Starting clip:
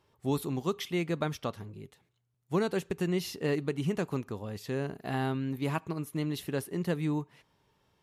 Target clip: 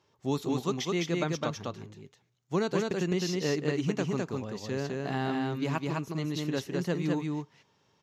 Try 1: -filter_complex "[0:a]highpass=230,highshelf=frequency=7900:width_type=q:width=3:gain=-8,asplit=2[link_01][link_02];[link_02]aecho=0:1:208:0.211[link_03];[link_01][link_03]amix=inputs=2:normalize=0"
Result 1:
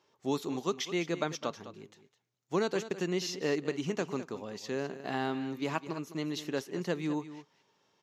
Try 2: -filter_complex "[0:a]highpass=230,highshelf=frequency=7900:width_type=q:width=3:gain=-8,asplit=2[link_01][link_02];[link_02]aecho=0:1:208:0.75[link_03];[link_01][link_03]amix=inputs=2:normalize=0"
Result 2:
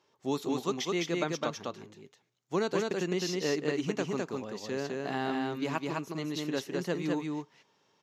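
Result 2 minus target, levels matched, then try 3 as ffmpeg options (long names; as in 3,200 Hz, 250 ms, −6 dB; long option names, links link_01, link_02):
125 Hz band −5.5 dB
-filter_complex "[0:a]highpass=100,highshelf=frequency=7900:width_type=q:width=3:gain=-8,asplit=2[link_01][link_02];[link_02]aecho=0:1:208:0.75[link_03];[link_01][link_03]amix=inputs=2:normalize=0"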